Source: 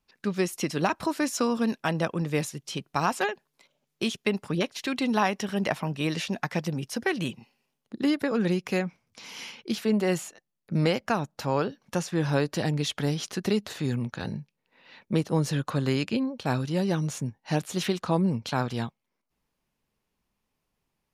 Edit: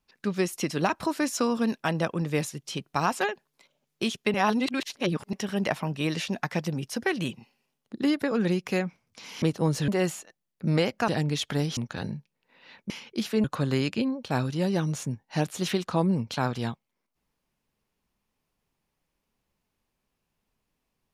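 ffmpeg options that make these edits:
-filter_complex "[0:a]asplit=9[s0][s1][s2][s3][s4][s5][s6][s7][s8];[s0]atrim=end=4.342[s9];[s1]atrim=start=4.338:end=5.332,asetpts=PTS-STARTPTS,areverse[s10];[s2]atrim=start=5.328:end=9.422[s11];[s3]atrim=start=15.128:end=15.592[s12];[s4]atrim=start=9.958:end=11.162[s13];[s5]atrim=start=12.558:end=13.252[s14];[s6]atrim=start=13.998:end=15.132[s15];[s7]atrim=start=9.418:end=9.962[s16];[s8]atrim=start=15.588[s17];[s9][s10]acrossfade=d=0.004:c1=hsin:c2=hsin[s18];[s18][s11]acrossfade=d=0.004:c1=hsin:c2=hsin[s19];[s19][s12]acrossfade=d=0.004:c1=hsin:c2=hsin[s20];[s20][s13]acrossfade=d=0.004:c1=hsin:c2=hsin[s21];[s21][s14]acrossfade=d=0.004:c1=hsin:c2=hsin[s22];[s22][s15]acrossfade=d=0.004:c1=hsin:c2=hsin[s23];[s23][s16]acrossfade=d=0.004:c1=hsin:c2=hsin[s24];[s24][s17]acrossfade=d=0.004:c1=hsin:c2=hsin"

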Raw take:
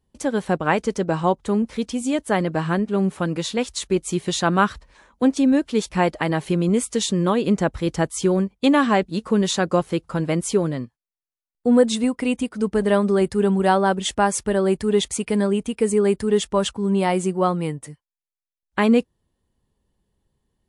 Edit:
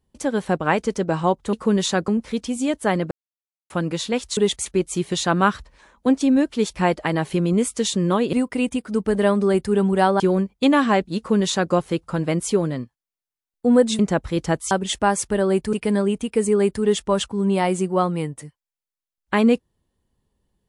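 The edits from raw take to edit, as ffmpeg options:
-filter_complex "[0:a]asplit=12[s0][s1][s2][s3][s4][s5][s6][s7][s8][s9][s10][s11];[s0]atrim=end=1.532[s12];[s1]atrim=start=9.178:end=9.732[s13];[s2]atrim=start=1.528:end=2.56,asetpts=PTS-STARTPTS,afade=t=out:st=1.028:d=0.004:c=hsin[s14];[s3]atrim=start=2.56:end=3.15,asetpts=PTS-STARTPTS,volume=0[s15];[s4]atrim=start=3.15:end=3.822,asetpts=PTS-STARTPTS,afade=t=in:d=0.004:c=hsin[s16];[s5]atrim=start=14.888:end=15.182[s17];[s6]atrim=start=3.818:end=7.492[s18];[s7]atrim=start=11.998:end=13.872[s19];[s8]atrim=start=8.208:end=12.002[s20];[s9]atrim=start=7.488:end=8.212[s21];[s10]atrim=start=13.868:end=14.892[s22];[s11]atrim=start=15.178[s23];[s12][s13]acrossfade=d=0.004:c1=hsin:c2=hsin[s24];[s14][s15][s16]concat=n=3:v=0:a=1[s25];[s24][s25]acrossfade=d=0.004:c1=hsin:c2=hsin[s26];[s26][s17]acrossfade=d=0.004:c1=hsin:c2=hsin[s27];[s27][s18]acrossfade=d=0.004:c1=hsin:c2=hsin[s28];[s28][s19]acrossfade=d=0.004:c1=hsin:c2=hsin[s29];[s29][s20]acrossfade=d=0.004:c1=hsin:c2=hsin[s30];[s30][s21]acrossfade=d=0.004:c1=hsin:c2=hsin[s31];[s31][s22]acrossfade=d=0.004:c1=hsin:c2=hsin[s32];[s32][s23]acrossfade=d=0.004:c1=hsin:c2=hsin"

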